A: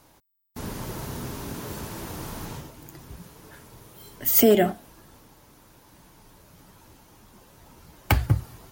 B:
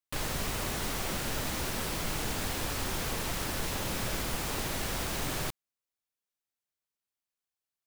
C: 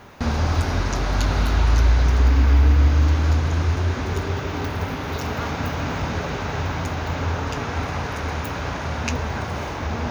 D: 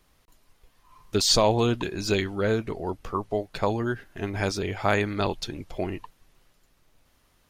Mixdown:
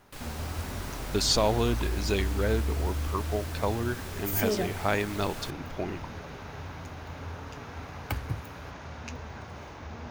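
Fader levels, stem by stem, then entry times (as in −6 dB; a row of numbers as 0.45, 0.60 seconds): −12.0, −9.0, −15.0, −4.0 decibels; 0.00, 0.00, 0.00, 0.00 seconds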